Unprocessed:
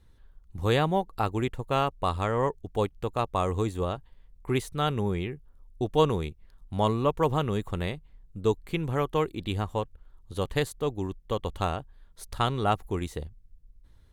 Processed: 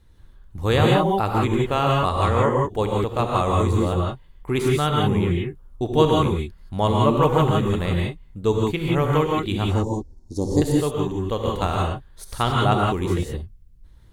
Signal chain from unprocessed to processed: 9.66–10.62 EQ curve 170 Hz 0 dB, 290 Hz +11 dB, 530 Hz -5 dB, 900 Hz -3 dB, 1300 Hz -29 dB, 1900 Hz -18 dB, 2900 Hz -30 dB, 5400 Hz +13 dB, 11000 Hz -6 dB; non-linear reverb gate 0.2 s rising, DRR -1.5 dB; gain +3.5 dB

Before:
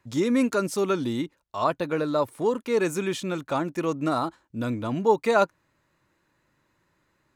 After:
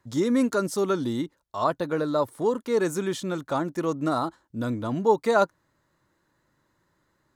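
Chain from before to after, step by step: bell 2500 Hz -10 dB 0.39 oct

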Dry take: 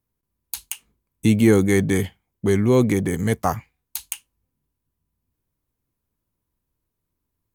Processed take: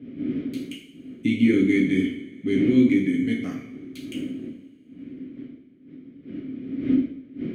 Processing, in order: wind noise 310 Hz -29 dBFS; vowel filter i; two-slope reverb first 0.58 s, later 2.5 s, from -20 dB, DRR -2 dB; gain +5 dB

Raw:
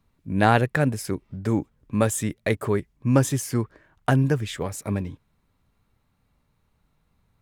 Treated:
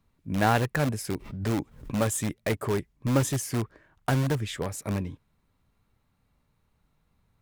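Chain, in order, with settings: in parallel at -8 dB: wrapped overs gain 18 dB; 1.14–1.94 on the sum: backwards sustainer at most 100 dB/s; gain -5 dB

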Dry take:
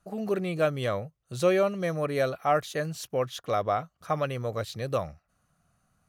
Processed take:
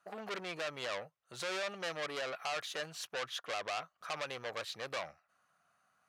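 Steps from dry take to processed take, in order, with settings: HPF 1300 Hz 12 dB/oct; tilt -4.5 dB/oct; limiter -30 dBFS, peak gain reduction 9.5 dB; core saturation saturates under 2900 Hz; gain +7 dB

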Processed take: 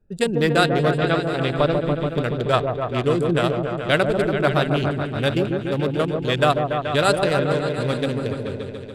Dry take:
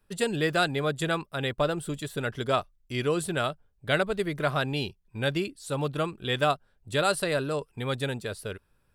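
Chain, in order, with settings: Wiener smoothing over 41 samples; 0.92–2.03 LPF 4700 Hz 24 dB/oct; repeats that get brighter 0.143 s, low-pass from 750 Hz, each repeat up 1 oct, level -3 dB; gain +7 dB

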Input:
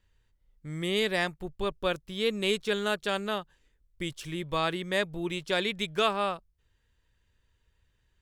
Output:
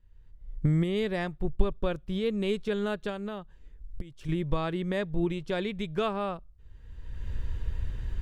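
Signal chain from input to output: recorder AGC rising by 29 dB/s; tilt -3 dB/oct; 3.09–4.29 compressor 12:1, threshold -27 dBFS, peak gain reduction 17.5 dB; on a send: passive tone stack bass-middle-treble 5-5-5 + reverb RT60 0.55 s, pre-delay 3 ms, DRR 35 dB; on the sum: gain -4.5 dB

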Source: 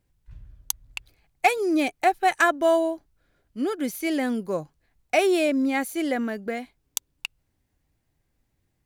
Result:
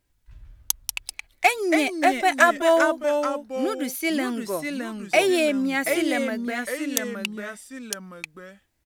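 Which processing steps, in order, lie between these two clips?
tilt shelf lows -3.5 dB, about 710 Hz; comb 3.1 ms, depth 32%; echoes that change speed 0.102 s, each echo -2 st, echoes 2, each echo -6 dB

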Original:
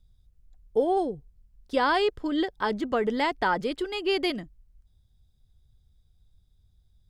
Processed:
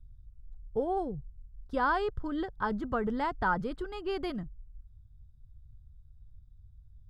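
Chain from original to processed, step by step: EQ curve 120 Hz 0 dB, 310 Hz -16 dB, 610 Hz -16 dB, 1400 Hz -9 dB, 2100 Hz -23 dB; gain +8.5 dB

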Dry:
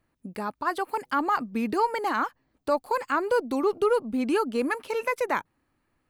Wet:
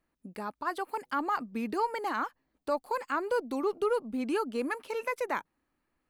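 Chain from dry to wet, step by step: bell 110 Hz -12.5 dB 0.48 oct; gain -5.5 dB

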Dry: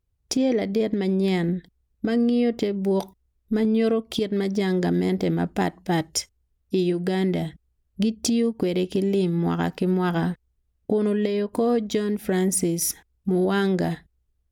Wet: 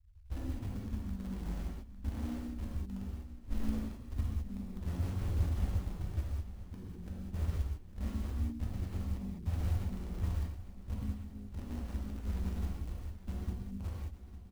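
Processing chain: ending faded out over 1.28 s; inverse Chebyshev low-pass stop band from 530 Hz, stop band 80 dB; comb 3 ms, depth 86%; in parallel at -8 dB: bit-crush 8-bit; on the sum: non-linear reverb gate 0.23 s flat, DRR -5 dB; short-mantissa float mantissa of 4-bit; on a send: feedback echo 0.853 s, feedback 58%, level -14.5 dB; on the sum: harmoniser +4 st -8 dB; gain +7 dB

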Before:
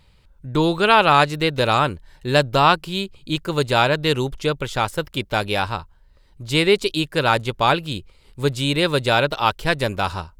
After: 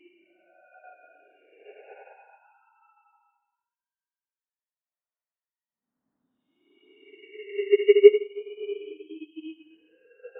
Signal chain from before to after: sine-wave speech; Paulstretch 5.2×, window 0.25 s, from 5.19; upward expander 2.5:1, over -23 dBFS; gain -3 dB

